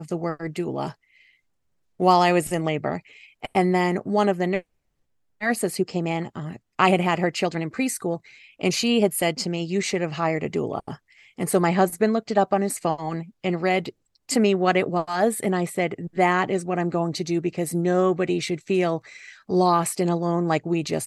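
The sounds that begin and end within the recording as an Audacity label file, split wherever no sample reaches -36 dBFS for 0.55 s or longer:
2.000000	4.610000	sound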